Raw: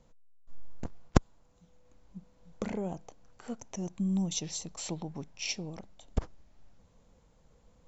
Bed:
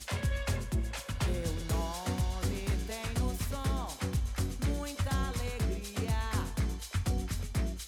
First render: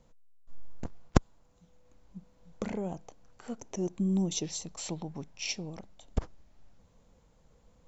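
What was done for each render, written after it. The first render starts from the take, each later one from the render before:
0:03.57–0:04.46: parametric band 370 Hz +9.5 dB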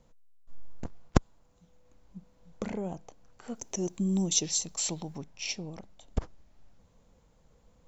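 0:03.55–0:05.18: high-shelf EQ 3,600 Hz +12 dB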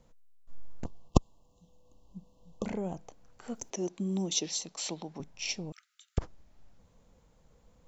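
0:00.85–0:02.66: linear-phase brick-wall band-stop 1,200–2,600 Hz
0:03.70–0:05.20: three-way crossover with the lows and the highs turned down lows −21 dB, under 180 Hz, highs −21 dB, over 6,200 Hz
0:05.72–0:06.18: linear-phase brick-wall high-pass 1,200 Hz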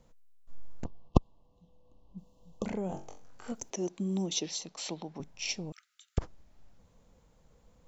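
0:00.84–0:02.18: high-frequency loss of the air 190 metres
0:02.87–0:03.52: flutter between parallel walls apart 3.7 metres, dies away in 0.33 s
0:04.26–0:05.21: Bessel low-pass filter 5,700 Hz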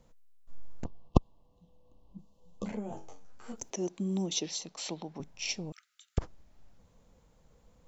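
0:02.17–0:03.58: string-ensemble chorus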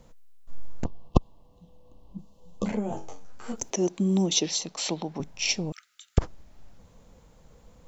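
boost into a limiter +8.5 dB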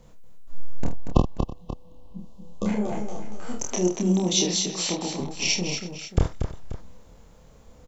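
double-tracking delay 28 ms −2 dB
on a send: multi-tap delay 48/235/328/534 ms −9/−7/−19.5/−14.5 dB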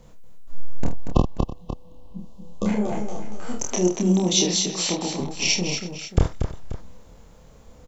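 level +2.5 dB
brickwall limiter −2 dBFS, peak gain reduction 3 dB

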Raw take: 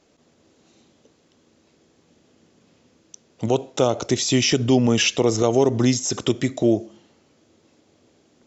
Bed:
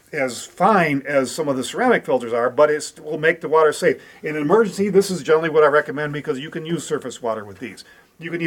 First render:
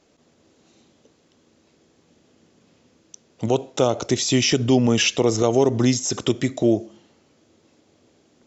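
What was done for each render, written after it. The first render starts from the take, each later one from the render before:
no processing that can be heard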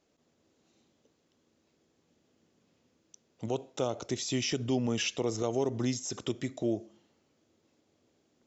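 level −12.5 dB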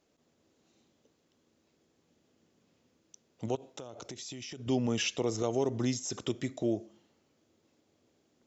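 0:03.55–0:04.67: downward compressor 16 to 1, threshold −39 dBFS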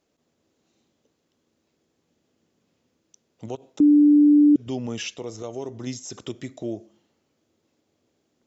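0:03.80–0:04.56: beep over 294 Hz −11 dBFS
0:05.14–0:05.87: tuned comb filter 97 Hz, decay 0.16 s, mix 50%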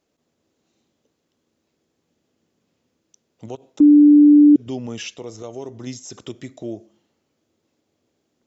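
dynamic equaliser 320 Hz, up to +5 dB, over −26 dBFS, Q 0.97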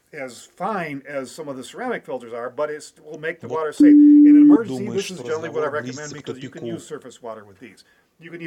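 mix in bed −10 dB

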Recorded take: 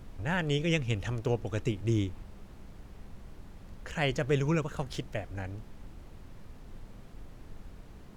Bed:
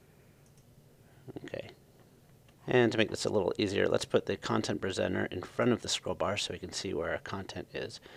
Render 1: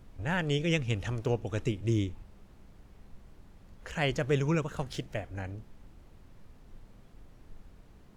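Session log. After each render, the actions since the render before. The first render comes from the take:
noise reduction from a noise print 6 dB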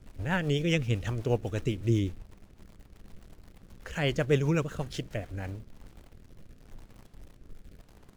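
in parallel at −6.5 dB: bit-depth reduction 8 bits, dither none
on the sum: rotating-speaker cabinet horn 8 Hz, later 0.9 Hz, at 0:04.92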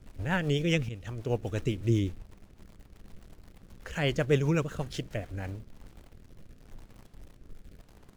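0:00.89–0:01.52: fade in, from −13.5 dB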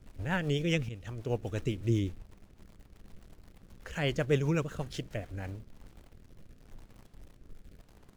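level −2.5 dB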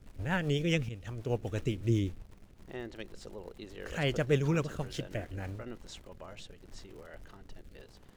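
mix in bed −16.5 dB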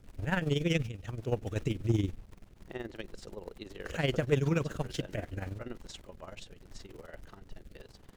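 amplitude modulation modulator 21 Hz, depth 55%
in parallel at −5 dB: hard clipping −27.5 dBFS, distortion −12 dB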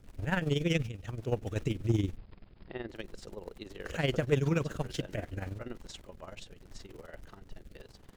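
0:02.17–0:02.89: linear-phase brick-wall low-pass 5,200 Hz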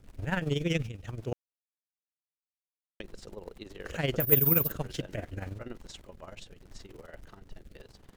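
0:01.33–0:03.00: silence
0:04.20–0:04.72: bad sample-rate conversion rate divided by 3×, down none, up zero stuff

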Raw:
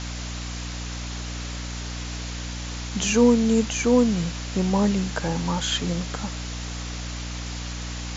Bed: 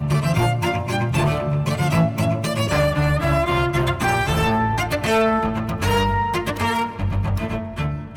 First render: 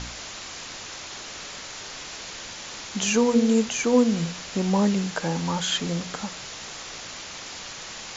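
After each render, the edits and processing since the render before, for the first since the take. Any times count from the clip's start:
hum removal 60 Hz, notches 8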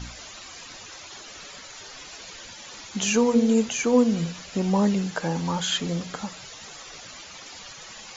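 broadband denoise 12 dB, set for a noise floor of −39 dBFS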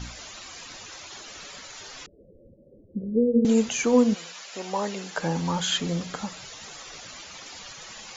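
0:02.06–0:03.45: Chebyshev low-pass filter 560 Hz, order 6
0:04.13–0:05.17: high-pass filter 830 Hz → 350 Hz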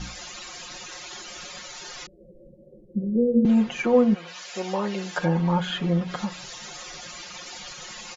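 comb filter 5.6 ms, depth 94%
treble cut that deepens with the level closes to 2,200 Hz, closed at −20.5 dBFS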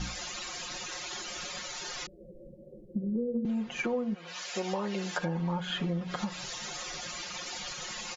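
downward compressor 8 to 1, threshold −29 dBFS, peak gain reduction 15 dB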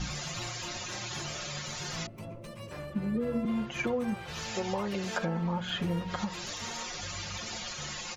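mix in bed −23.5 dB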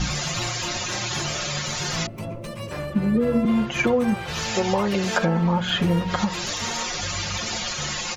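level +10.5 dB

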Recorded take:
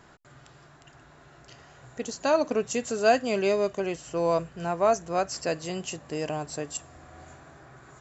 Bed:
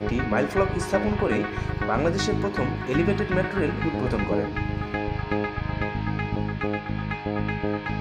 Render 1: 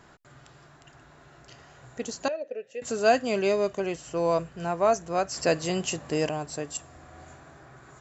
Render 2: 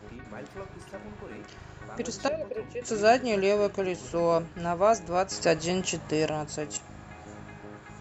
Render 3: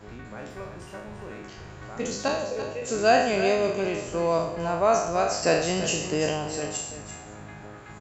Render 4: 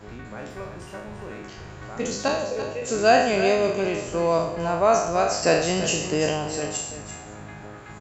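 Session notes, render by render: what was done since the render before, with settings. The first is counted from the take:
0:02.28–0:02.82: formant filter e; 0:05.37–0:06.29: clip gain +5 dB
mix in bed −19 dB
peak hold with a decay on every bin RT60 0.74 s; single-tap delay 338 ms −11 dB
level +2.5 dB

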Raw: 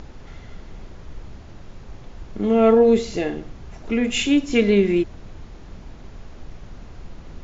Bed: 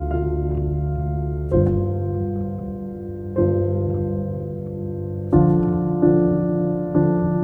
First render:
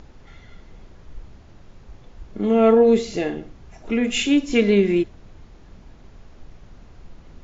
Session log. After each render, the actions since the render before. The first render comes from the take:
noise reduction from a noise print 6 dB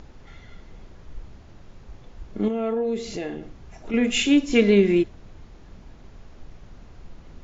0:02.48–0:03.94: downward compressor 2 to 1, threshold −31 dBFS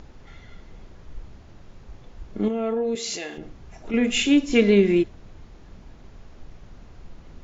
0:02.95–0:03.38: spectral tilt +4 dB per octave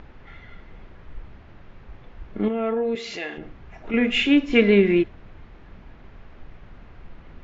low-pass filter 2,900 Hz 12 dB per octave
parametric band 2,000 Hz +6 dB 2 octaves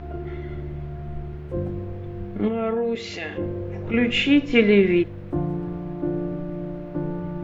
mix in bed −10.5 dB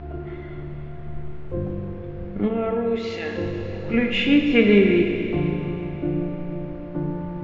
high-frequency loss of the air 110 metres
four-comb reverb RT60 3.4 s, combs from 27 ms, DRR 3.5 dB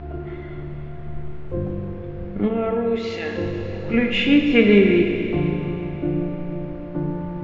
level +1.5 dB

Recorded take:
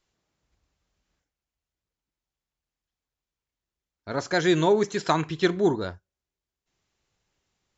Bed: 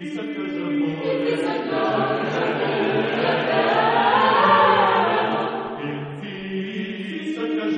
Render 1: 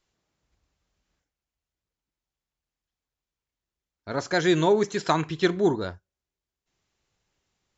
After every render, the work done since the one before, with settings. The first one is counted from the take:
no processing that can be heard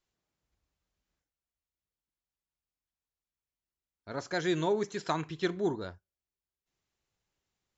level −8.5 dB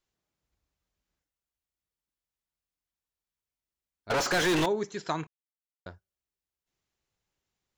0:04.10–0:04.66: mid-hump overdrive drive 37 dB, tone 4,100 Hz, clips at −19 dBFS
0:05.27–0:05.86: silence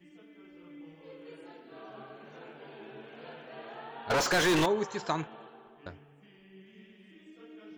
mix in bed −26.5 dB

